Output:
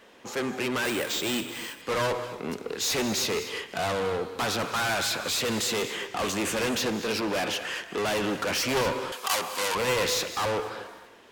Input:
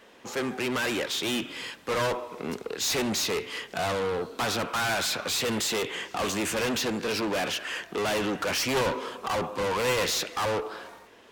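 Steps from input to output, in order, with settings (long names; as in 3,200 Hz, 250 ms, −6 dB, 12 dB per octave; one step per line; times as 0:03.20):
on a send at −11 dB: convolution reverb, pre-delay 3 ms
0:00.85–0:01.82: on the sum: bad sample-rate conversion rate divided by 4×, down none, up hold
0:09.12–0:09.75: spectral tilt +4.5 dB per octave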